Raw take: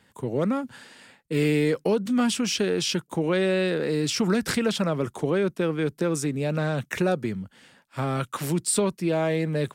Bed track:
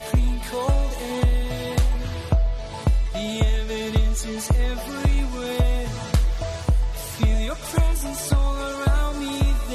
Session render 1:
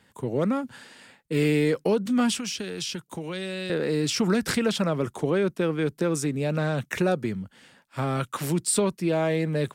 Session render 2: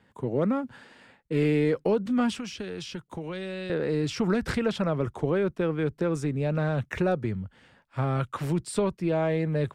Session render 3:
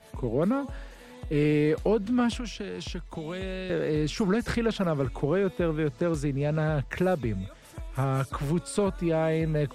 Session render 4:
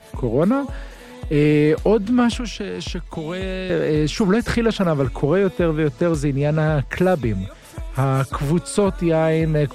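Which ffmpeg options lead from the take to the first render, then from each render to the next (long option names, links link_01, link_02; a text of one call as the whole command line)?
ffmpeg -i in.wav -filter_complex "[0:a]asettb=1/sr,asplit=3[link_01][link_02][link_03];[link_01]atrim=end=2.384[link_04];[link_02]atrim=start=2.38:end=3.7,asetpts=PTS-STARTPTS,afade=type=in:duration=0.004:curve=qsin,afade=type=out:start_time=1.316:duration=0.004:curve=qsin,acrossover=split=210|670|2800[link_05][link_06][link_07][link_08];[link_05]acompressor=threshold=-39dB:ratio=3[link_09];[link_06]acompressor=threshold=-41dB:ratio=3[link_10];[link_07]acompressor=threshold=-44dB:ratio=3[link_11];[link_08]acompressor=threshold=-32dB:ratio=3[link_12];[link_09][link_10][link_11][link_12]amix=inputs=4:normalize=0[link_13];[link_03]atrim=start=3.696[link_14];[link_04][link_13]acrossfade=duration=0.004:curve1=hsin:curve2=qsin[link_15];[link_15][link_14]acrossfade=duration=0.004:curve1=qsin:curve2=hsin" out.wav
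ffmpeg -i in.wav -af "lowpass=frequency=1700:poles=1,asubboost=boost=4.5:cutoff=91" out.wav
ffmpeg -i in.wav -i bed.wav -filter_complex "[1:a]volume=-20.5dB[link_01];[0:a][link_01]amix=inputs=2:normalize=0" out.wav
ffmpeg -i in.wav -af "volume=8dB" out.wav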